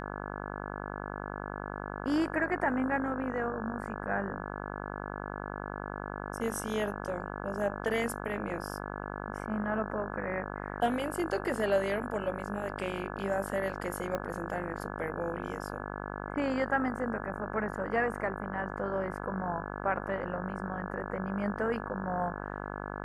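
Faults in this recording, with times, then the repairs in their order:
buzz 50 Hz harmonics 34 -39 dBFS
14.15 s: pop -20 dBFS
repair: de-click; de-hum 50 Hz, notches 34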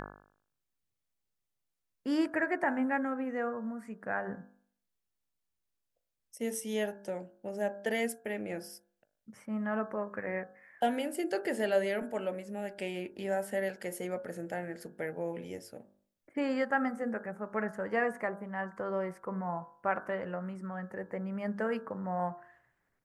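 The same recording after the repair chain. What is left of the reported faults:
14.15 s: pop

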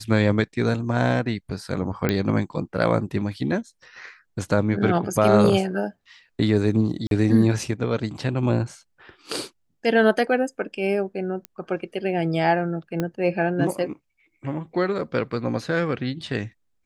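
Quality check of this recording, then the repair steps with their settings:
2.09 s: pop -8 dBFS
7.07–7.11 s: dropout 42 ms
11.45 s: pop -17 dBFS
13.00 s: pop -12 dBFS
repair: de-click; interpolate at 7.07 s, 42 ms

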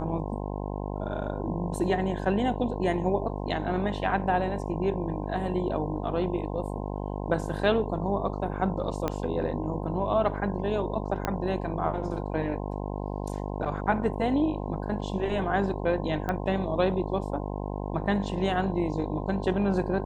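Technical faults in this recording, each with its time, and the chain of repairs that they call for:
buzz 50 Hz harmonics 21 -33 dBFS
9.08 s: pop -14 dBFS
11.25 s: pop -12 dBFS
16.29 s: pop -17 dBFS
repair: de-click; de-hum 50 Hz, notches 21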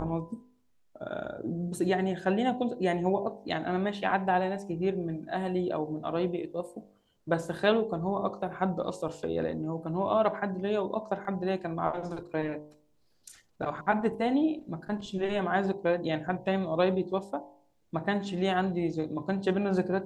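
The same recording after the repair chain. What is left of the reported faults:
9.08 s: pop
11.25 s: pop
16.29 s: pop

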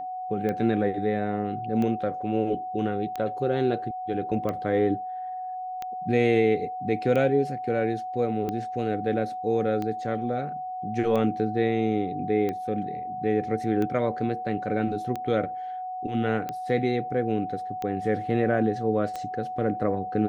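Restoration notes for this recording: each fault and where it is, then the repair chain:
tick 45 rpm -18 dBFS
whine 740 Hz -31 dBFS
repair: de-click; band-stop 740 Hz, Q 30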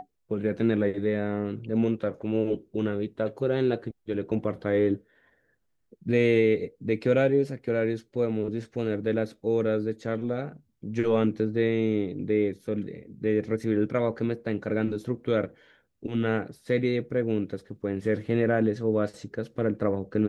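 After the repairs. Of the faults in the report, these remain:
nothing left

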